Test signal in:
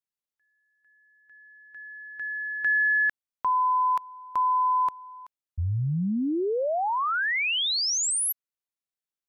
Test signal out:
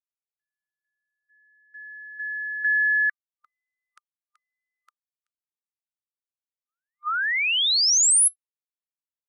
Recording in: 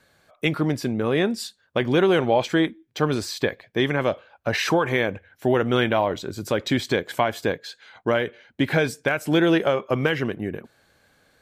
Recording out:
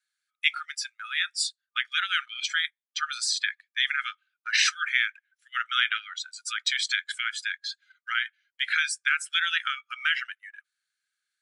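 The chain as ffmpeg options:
-af "aeval=exprs='0.376*(cos(1*acos(clip(val(0)/0.376,-1,1)))-cos(1*PI/2))+0.00944*(cos(2*acos(clip(val(0)/0.376,-1,1)))-cos(2*PI/2))':c=same,afftfilt=real='re*between(b*sr/4096,1200,11000)':imag='im*between(b*sr/4096,1200,11000)':win_size=4096:overlap=0.75,highshelf=f=3.8k:g=10,afftdn=nr=17:nf=-34,agate=range=-7dB:threshold=-53dB:ratio=16:release=28:detection=rms"

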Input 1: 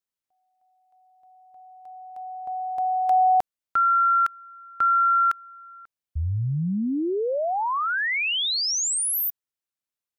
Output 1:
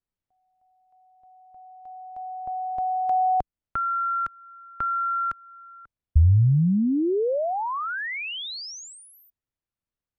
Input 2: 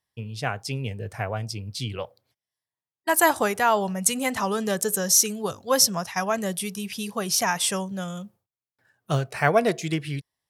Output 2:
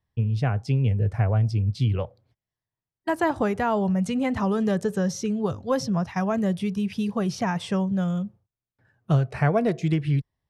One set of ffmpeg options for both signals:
-filter_complex "[0:a]acrossover=split=490|6200[a][b][c];[a]acompressor=threshold=-29dB:ratio=3[d];[b]acompressor=threshold=-33dB:ratio=1.5[e];[c]acompressor=threshold=-41dB:ratio=3[f];[d][e][f]amix=inputs=3:normalize=0,aemphasis=mode=reproduction:type=riaa"

